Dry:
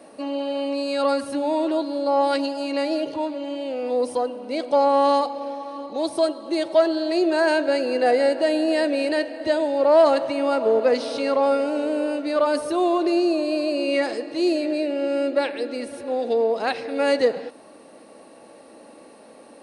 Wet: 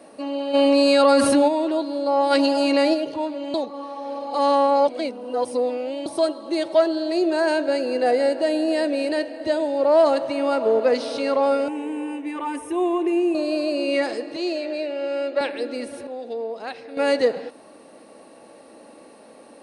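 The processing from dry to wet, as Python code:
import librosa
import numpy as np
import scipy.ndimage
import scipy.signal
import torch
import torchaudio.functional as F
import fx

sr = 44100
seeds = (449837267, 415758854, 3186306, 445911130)

y = fx.env_flatten(x, sr, amount_pct=70, at=(0.53, 1.47), fade=0.02)
y = fx.env_flatten(y, sr, amount_pct=50, at=(2.3, 2.93), fade=0.02)
y = fx.peak_eq(y, sr, hz=1900.0, db=-3.0, octaves=2.3, at=(6.84, 10.31))
y = fx.fixed_phaser(y, sr, hz=900.0, stages=8, at=(11.68, 13.35))
y = fx.bandpass_edges(y, sr, low_hz=450.0, high_hz=6200.0, at=(14.36, 15.41))
y = fx.edit(y, sr, fx.reverse_span(start_s=3.54, length_s=2.52),
    fx.clip_gain(start_s=16.07, length_s=0.9, db=-8.5), tone=tone)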